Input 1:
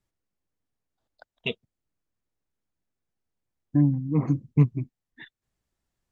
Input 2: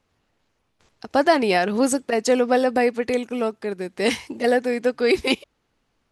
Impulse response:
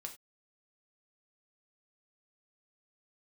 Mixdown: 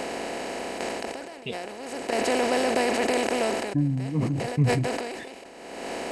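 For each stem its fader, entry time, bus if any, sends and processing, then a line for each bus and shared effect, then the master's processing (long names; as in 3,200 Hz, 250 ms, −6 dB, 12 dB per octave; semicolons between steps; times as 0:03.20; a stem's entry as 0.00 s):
−3.0 dB, 0.00 s, no send, rotating-speaker cabinet horn 5 Hz
−13.0 dB, 0.00 s, no send, compressor on every frequency bin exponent 0.2; automatic ducking −23 dB, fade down 0.25 s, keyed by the first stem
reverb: not used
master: level that may fall only so fast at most 34 dB per second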